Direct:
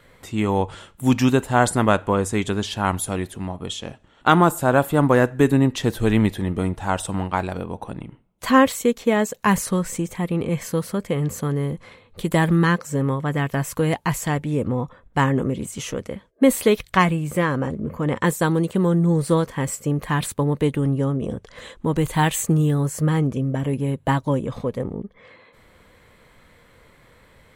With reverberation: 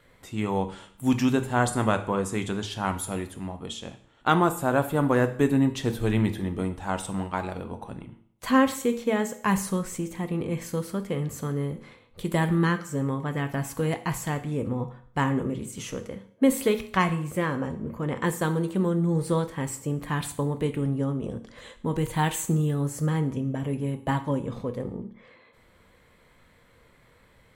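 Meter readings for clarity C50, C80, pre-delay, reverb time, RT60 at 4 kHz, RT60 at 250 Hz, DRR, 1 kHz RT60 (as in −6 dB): 13.0 dB, 17.0 dB, 8 ms, 0.55 s, 0.60 s, 0.55 s, 8.5 dB, 0.55 s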